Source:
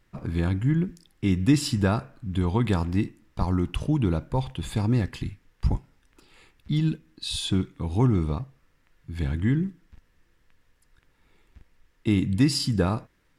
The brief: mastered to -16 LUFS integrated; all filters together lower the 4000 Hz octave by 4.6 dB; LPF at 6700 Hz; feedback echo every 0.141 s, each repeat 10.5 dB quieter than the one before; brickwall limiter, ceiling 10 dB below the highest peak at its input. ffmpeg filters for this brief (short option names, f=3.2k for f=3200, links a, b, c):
-af "lowpass=6.7k,equalizer=f=4k:t=o:g=-5,alimiter=limit=-18dB:level=0:latency=1,aecho=1:1:141|282|423:0.299|0.0896|0.0269,volume=13dB"